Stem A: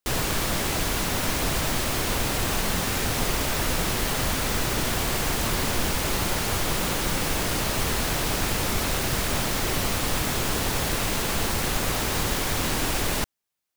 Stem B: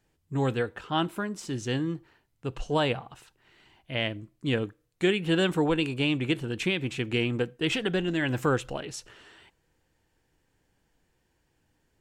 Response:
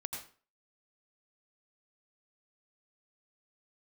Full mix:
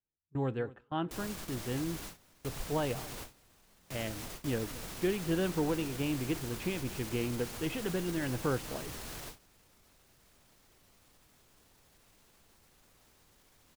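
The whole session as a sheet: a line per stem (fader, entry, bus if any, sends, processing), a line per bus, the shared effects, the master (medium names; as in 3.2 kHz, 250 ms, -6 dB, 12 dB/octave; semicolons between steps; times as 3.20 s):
-15.0 dB, 1.05 s, no send, no echo send, tone controls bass 0 dB, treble +3 dB; peak limiter -19 dBFS, peak gain reduction 9 dB
-6.0 dB, 0.00 s, no send, echo send -19.5 dB, low-pass 1.2 kHz 6 dB/octave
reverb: none
echo: feedback delay 230 ms, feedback 42%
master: gate with hold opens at -33 dBFS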